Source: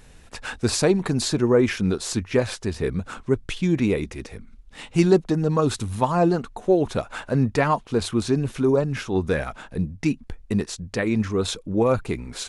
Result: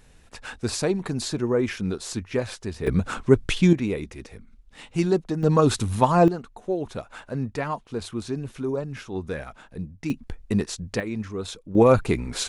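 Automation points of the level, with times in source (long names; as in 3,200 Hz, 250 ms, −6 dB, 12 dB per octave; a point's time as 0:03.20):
−5 dB
from 0:02.87 +5 dB
from 0:03.73 −5 dB
from 0:05.43 +2.5 dB
from 0:06.28 −8 dB
from 0:10.10 0 dB
from 0:11.00 −8 dB
from 0:11.75 +4 dB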